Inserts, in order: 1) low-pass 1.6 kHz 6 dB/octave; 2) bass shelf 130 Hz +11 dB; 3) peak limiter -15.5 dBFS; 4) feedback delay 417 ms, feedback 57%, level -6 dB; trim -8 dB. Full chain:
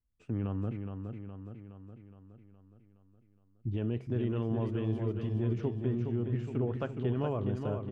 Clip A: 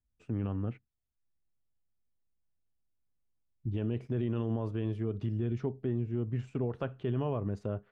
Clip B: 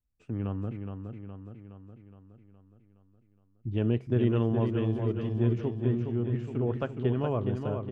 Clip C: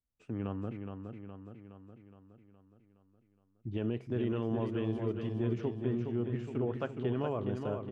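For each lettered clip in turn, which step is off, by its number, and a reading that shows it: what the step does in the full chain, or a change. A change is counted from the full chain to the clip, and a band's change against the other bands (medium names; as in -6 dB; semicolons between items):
4, echo-to-direct -4.5 dB to none; 3, mean gain reduction 2.5 dB; 2, 125 Hz band -5.0 dB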